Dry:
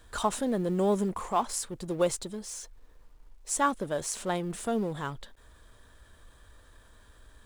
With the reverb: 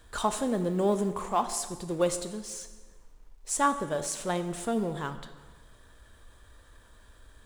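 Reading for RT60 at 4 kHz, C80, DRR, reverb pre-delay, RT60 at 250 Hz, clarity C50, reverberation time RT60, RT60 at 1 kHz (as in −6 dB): 1.1 s, 12.5 dB, 9.0 dB, 13 ms, 1.3 s, 11.0 dB, 1.3 s, 1.3 s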